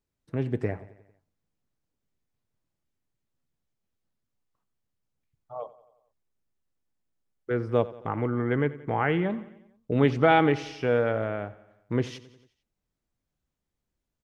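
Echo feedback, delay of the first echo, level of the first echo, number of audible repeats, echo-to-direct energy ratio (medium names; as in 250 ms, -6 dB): 57%, 90 ms, -18.0 dB, 4, -16.5 dB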